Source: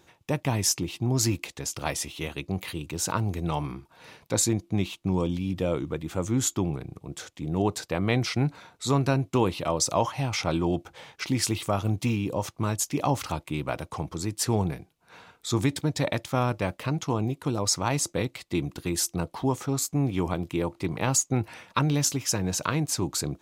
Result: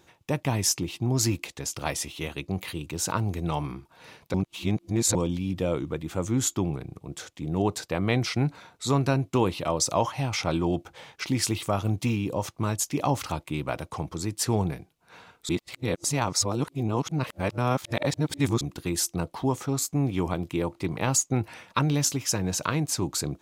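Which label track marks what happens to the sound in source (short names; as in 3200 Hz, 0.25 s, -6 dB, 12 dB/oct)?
4.340000	5.150000	reverse
15.490000	18.610000	reverse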